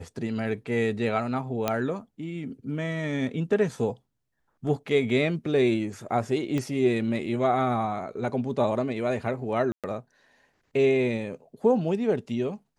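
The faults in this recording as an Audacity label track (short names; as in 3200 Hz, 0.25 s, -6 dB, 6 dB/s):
1.680000	1.680000	pop -10 dBFS
6.580000	6.580000	pop -17 dBFS
9.720000	9.840000	gap 0.117 s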